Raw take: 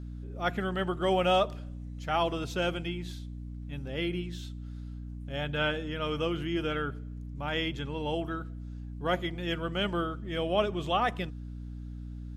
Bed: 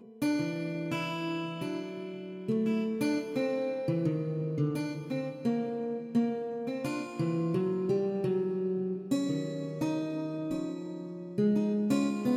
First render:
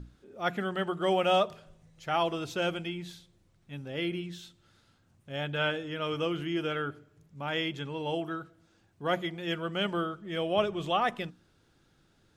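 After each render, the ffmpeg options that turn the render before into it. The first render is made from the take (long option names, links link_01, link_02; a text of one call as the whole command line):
ffmpeg -i in.wav -af "bandreject=frequency=60:width_type=h:width=6,bandreject=frequency=120:width_type=h:width=6,bandreject=frequency=180:width_type=h:width=6,bandreject=frequency=240:width_type=h:width=6,bandreject=frequency=300:width_type=h:width=6" out.wav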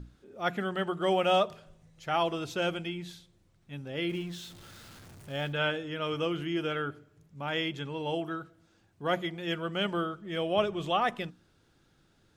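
ffmpeg -i in.wav -filter_complex "[0:a]asettb=1/sr,asplit=3[link_01][link_02][link_03];[link_01]atrim=end=4.094[link_04];[link_02]atrim=start=4.09:end=5.53,asetpts=PTS-STARTPTS,afade=type=in:duration=0.004:curve=qsin,afade=type=out:start_time=1.436:duration=0.004:curve=qsin,aeval=exprs='val(0)+0.5*0.00501*sgn(val(0))':channel_layout=same[link_05];[link_03]atrim=start=5.526[link_06];[link_04][link_05]acrossfade=duration=0.004:curve1=hsin:curve2=qsin[link_07];[link_07][link_06]acrossfade=duration=0.004:curve1=qsin:curve2=hsin" out.wav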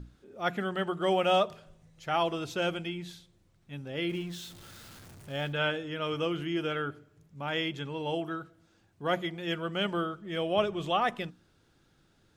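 ffmpeg -i in.wav -filter_complex "[0:a]asettb=1/sr,asplit=3[link_01][link_02][link_03];[link_01]atrim=end=4.304[link_04];[link_02]atrim=start=4.3:end=5.14,asetpts=PTS-STARTPTS,afade=type=in:duration=0.004:curve=qsin,afade=type=out:start_time=0.836:duration=0.004:curve=qsin,highshelf=frequency=8100:gain=4.5[link_05];[link_03]atrim=start=5.136[link_06];[link_04][link_05]acrossfade=duration=0.004:curve1=hsin:curve2=qsin[link_07];[link_07][link_06]acrossfade=duration=0.004:curve1=qsin:curve2=hsin" out.wav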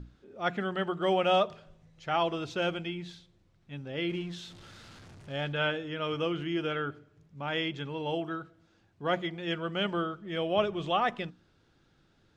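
ffmpeg -i in.wav -af "lowpass=5600" out.wav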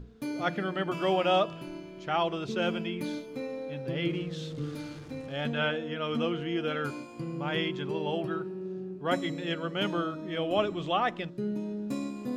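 ffmpeg -i in.wav -i bed.wav -filter_complex "[1:a]volume=-6dB[link_01];[0:a][link_01]amix=inputs=2:normalize=0" out.wav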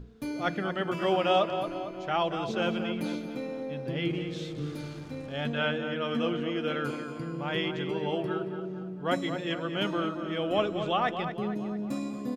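ffmpeg -i in.wav -filter_complex "[0:a]asplit=2[link_01][link_02];[link_02]adelay=227,lowpass=frequency=2900:poles=1,volume=-8dB,asplit=2[link_03][link_04];[link_04]adelay=227,lowpass=frequency=2900:poles=1,volume=0.55,asplit=2[link_05][link_06];[link_06]adelay=227,lowpass=frequency=2900:poles=1,volume=0.55,asplit=2[link_07][link_08];[link_08]adelay=227,lowpass=frequency=2900:poles=1,volume=0.55,asplit=2[link_09][link_10];[link_10]adelay=227,lowpass=frequency=2900:poles=1,volume=0.55,asplit=2[link_11][link_12];[link_12]adelay=227,lowpass=frequency=2900:poles=1,volume=0.55,asplit=2[link_13][link_14];[link_14]adelay=227,lowpass=frequency=2900:poles=1,volume=0.55[link_15];[link_01][link_03][link_05][link_07][link_09][link_11][link_13][link_15]amix=inputs=8:normalize=0" out.wav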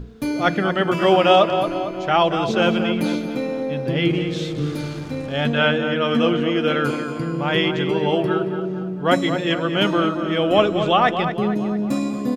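ffmpeg -i in.wav -af "volume=11dB,alimiter=limit=-3dB:level=0:latency=1" out.wav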